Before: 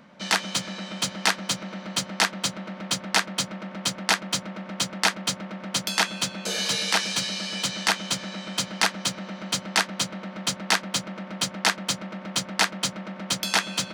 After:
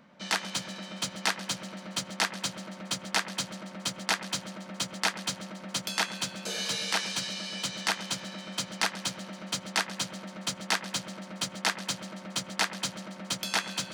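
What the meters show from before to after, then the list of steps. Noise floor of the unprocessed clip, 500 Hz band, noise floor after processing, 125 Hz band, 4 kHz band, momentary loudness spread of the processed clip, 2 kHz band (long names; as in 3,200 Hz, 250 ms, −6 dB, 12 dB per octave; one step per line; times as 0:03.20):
−42 dBFS, −5.5 dB, −46 dBFS, −6.0 dB, −6.0 dB, 6 LU, −6.0 dB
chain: echo with a time of its own for lows and highs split 2,600 Hz, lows 105 ms, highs 138 ms, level −15.5 dB
level −6 dB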